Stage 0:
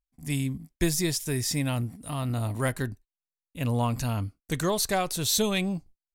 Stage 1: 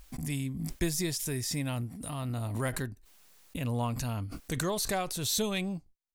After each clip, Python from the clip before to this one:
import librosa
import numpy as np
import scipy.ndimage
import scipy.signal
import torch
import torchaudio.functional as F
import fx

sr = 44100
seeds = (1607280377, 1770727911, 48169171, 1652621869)

y = fx.pre_swell(x, sr, db_per_s=40.0)
y = y * librosa.db_to_amplitude(-5.5)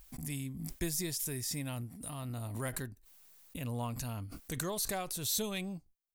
y = fx.high_shelf(x, sr, hz=10000.0, db=10.5)
y = y * librosa.db_to_amplitude(-6.0)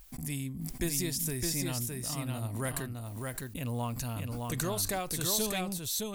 y = x + 10.0 ** (-3.5 / 20.0) * np.pad(x, (int(613 * sr / 1000.0), 0))[:len(x)]
y = y * librosa.db_to_amplitude(3.0)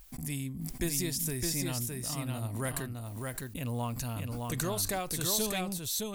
y = x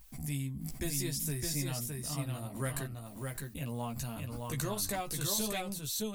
y = fx.chorus_voices(x, sr, voices=4, hz=0.48, base_ms=14, depth_ms=1.0, mix_pct=40)